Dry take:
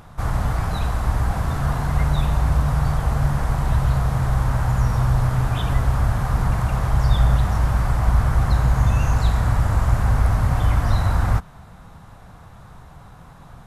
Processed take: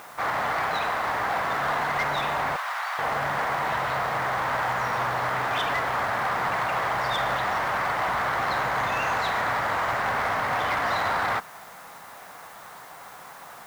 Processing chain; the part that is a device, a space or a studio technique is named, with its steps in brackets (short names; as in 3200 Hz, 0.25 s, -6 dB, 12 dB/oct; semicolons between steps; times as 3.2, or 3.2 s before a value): drive-through speaker (BPF 520–3700 Hz; bell 2000 Hz +6 dB 0.46 oct; hard clip -26 dBFS, distortion -17 dB; white noise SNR 25 dB); 2.56–2.99 Bessel high-pass 1100 Hz, order 6; gain +5.5 dB